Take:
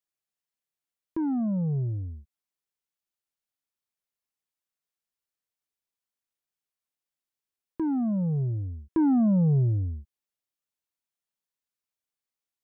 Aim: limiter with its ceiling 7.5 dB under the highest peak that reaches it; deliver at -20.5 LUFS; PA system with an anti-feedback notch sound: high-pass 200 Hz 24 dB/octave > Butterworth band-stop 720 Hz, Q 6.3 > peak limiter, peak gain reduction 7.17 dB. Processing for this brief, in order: peak limiter -26.5 dBFS; high-pass 200 Hz 24 dB/octave; Butterworth band-stop 720 Hz, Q 6.3; trim +18.5 dB; peak limiter -12.5 dBFS

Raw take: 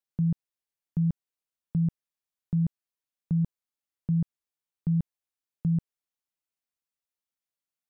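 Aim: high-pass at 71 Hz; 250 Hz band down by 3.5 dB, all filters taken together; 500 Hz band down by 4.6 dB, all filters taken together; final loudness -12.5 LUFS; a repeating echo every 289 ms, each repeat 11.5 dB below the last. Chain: high-pass 71 Hz; peaking EQ 250 Hz -7.5 dB; peaking EQ 500 Hz -3 dB; feedback delay 289 ms, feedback 27%, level -11.5 dB; trim +22.5 dB

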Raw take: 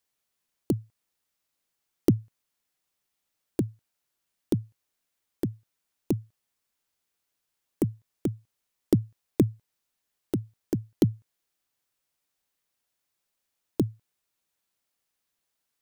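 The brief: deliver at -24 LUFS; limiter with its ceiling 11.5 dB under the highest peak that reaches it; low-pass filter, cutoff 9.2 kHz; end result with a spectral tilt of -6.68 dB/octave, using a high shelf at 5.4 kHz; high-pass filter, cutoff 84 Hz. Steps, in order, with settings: high-pass 84 Hz; low-pass 9.2 kHz; treble shelf 5.4 kHz -8 dB; trim +11.5 dB; peak limiter -8 dBFS

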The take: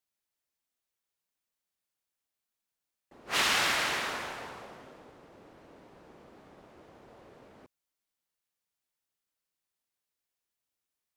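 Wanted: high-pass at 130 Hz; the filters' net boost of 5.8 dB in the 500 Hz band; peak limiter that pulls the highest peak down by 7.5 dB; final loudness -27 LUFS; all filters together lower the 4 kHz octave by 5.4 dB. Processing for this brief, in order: high-pass 130 Hz; peaking EQ 500 Hz +7.5 dB; peaking EQ 4 kHz -7.5 dB; trim +7.5 dB; peak limiter -16 dBFS

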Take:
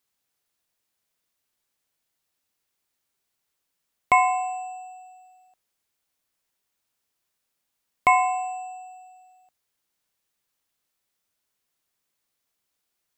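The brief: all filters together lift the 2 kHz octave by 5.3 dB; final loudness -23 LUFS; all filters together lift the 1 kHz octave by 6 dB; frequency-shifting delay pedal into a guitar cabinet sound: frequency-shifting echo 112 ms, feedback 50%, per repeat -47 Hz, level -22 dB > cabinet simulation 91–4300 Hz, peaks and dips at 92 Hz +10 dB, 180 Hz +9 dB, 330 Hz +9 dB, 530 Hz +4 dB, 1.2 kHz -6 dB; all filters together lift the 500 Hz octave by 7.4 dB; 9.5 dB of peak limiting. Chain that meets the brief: peaking EQ 500 Hz +7.5 dB; peaking EQ 1 kHz +4.5 dB; peaking EQ 2 kHz +5 dB; peak limiter -9 dBFS; frequency-shifting echo 112 ms, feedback 50%, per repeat -47 Hz, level -22 dB; cabinet simulation 91–4300 Hz, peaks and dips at 92 Hz +10 dB, 180 Hz +9 dB, 330 Hz +9 dB, 530 Hz +4 dB, 1.2 kHz -6 dB; trim -1.5 dB

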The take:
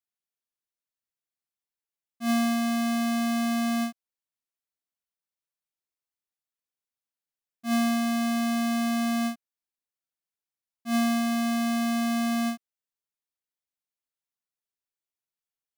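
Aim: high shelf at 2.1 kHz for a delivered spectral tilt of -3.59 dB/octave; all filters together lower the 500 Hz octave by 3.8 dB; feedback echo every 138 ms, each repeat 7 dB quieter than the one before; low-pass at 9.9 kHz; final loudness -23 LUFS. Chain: low-pass 9.9 kHz; peaking EQ 500 Hz -8.5 dB; treble shelf 2.1 kHz +6 dB; feedback delay 138 ms, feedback 45%, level -7 dB; trim +3 dB

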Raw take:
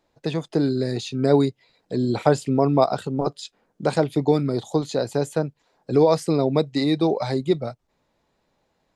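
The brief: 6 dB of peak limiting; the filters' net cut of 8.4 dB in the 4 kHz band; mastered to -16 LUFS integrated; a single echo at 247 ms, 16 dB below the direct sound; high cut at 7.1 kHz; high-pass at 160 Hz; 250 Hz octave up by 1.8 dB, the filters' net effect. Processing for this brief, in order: high-pass 160 Hz; low-pass 7.1 kHz; peaking EQ 250 Hz +3 dB; peaking EQ 4 kHz -9 dB; peak limiter -10.5 dBFS; delay 247 ms -16 dB; trim +7 dB

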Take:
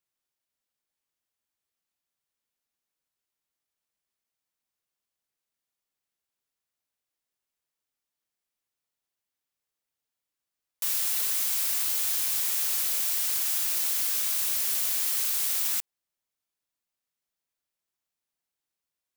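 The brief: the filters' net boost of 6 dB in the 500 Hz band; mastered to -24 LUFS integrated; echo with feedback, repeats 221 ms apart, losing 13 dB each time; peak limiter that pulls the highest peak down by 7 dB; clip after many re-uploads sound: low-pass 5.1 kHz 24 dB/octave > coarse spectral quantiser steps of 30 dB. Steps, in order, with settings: peaking EQ 500 Hz +7.5 dB; peak limiter -21.5 dBFS; low-pass 5.1 kHz 24 dB/octave; feedback delay 221 ms, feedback 22%, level -13 dB; coarse spectral quantiser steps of 30 dB; trim +17 dB

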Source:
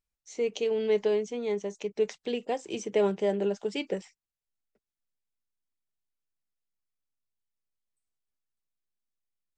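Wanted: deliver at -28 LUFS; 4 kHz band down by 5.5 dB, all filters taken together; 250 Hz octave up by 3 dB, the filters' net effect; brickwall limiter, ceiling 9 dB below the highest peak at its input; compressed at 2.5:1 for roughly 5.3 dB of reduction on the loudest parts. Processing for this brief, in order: peaking EQ 250 Hz +4 dB; peaking EQ 4 kHz -8.5 dB; compression 2.5:1, threshold -27 dBFS; trim +8 dB; peak limiter -18.5 dBFS

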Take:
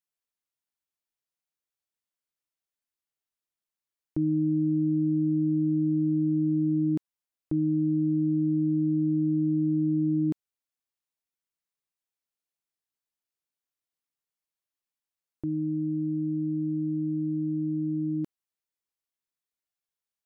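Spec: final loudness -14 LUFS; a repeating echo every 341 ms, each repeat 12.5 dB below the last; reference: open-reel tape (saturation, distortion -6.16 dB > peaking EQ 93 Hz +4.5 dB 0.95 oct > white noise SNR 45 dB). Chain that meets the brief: feedback delay 341 ms, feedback 24%, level -12.5 dB; saturation -35 dBFS; peaking EQ 93 Hz +4.5 dB 0.95 oct; white noise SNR 45 dB; trim +23.5 dB

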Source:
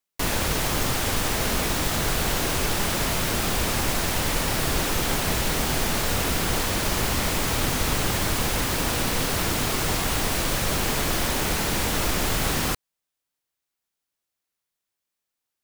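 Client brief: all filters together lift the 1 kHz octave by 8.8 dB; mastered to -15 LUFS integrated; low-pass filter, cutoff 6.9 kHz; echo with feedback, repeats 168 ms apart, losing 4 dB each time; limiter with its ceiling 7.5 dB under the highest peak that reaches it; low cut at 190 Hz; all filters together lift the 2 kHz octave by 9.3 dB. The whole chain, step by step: high-pass 190 Hz; low-pass 6.9 kHz; peaking EQ 1 kHz +8.5 dB; peaking EQ 2 kHz +9 dB; peak limiter -15.5 dBFS; feedback delay 168 ms, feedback 63%, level -4 dB; trim +6.5 dB

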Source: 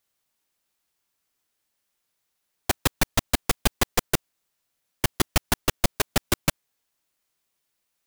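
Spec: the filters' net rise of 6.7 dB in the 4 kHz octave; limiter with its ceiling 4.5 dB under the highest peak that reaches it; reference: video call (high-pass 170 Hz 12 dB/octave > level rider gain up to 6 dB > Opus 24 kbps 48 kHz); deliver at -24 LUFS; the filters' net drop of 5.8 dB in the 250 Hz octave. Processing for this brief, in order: peaking EQ 250 Hz -6.5 dB; peaking EQ 4 kHz +8.5 dB; peak limiter -7.5 dBFS; high-pass 170 Hz 12 dB/octave; level rider gain up to 6 dB; trim +3.5 dB; Opus 24 kbps 48 kHz

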